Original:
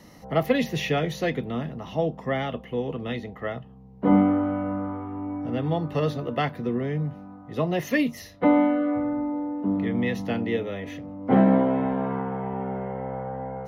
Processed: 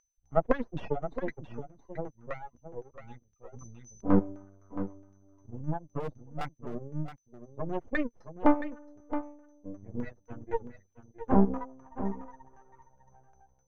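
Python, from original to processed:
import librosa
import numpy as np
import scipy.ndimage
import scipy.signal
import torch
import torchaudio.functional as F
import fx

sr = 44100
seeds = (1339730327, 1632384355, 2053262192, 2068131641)

y = fx.bin_expand(x, sr, power=3.0)
y = fx.dereverb_blind(y, sr, rt60_s=1.3)
y = np.maximum(y, 0.0)
y = y + 10.0 ** (-53.0 / 20.0) * np.sin(2.0 * np.pi * 6100.0 * np.arange(len(y)) / sr)
y = fx.filter_lfo_lowpass(y, sr, shape='saw_down', hz=3.9, low_hz=450.0, high_hz=1600.0, q=1.1)
y = fx.clip_hard(y, sr, threshold_db=-32.5, at=(6.0, 6.71))
y = y + 10.0 ** (-11.0 / 20.0) * np.pad(y, (int(671 * sr / 1000.0), 0))[:len(y)]
y = fx.sustainer(y, sr, db_per_s=23.0, at=(3.52, 4.18), fade=0.02)
y = F.gain(torch.from_numpy(y), 4.0).numpy()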